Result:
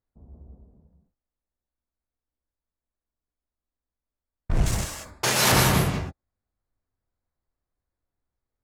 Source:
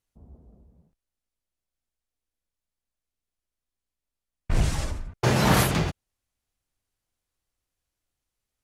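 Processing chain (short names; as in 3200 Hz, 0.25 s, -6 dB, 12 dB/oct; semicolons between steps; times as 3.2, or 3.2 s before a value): Wiener smoothing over 15 samples; 4.66–5.52 tilt +4 dB/oct; non-linear reverb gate 0.22 s rising, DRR 3 dB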